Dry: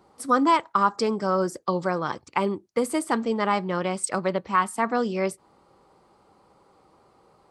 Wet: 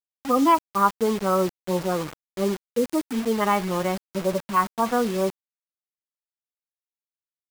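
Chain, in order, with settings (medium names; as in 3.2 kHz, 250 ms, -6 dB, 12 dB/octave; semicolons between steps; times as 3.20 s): harmonic-percussive separation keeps harmonic; bit crusher 6-bit; trim +2 dB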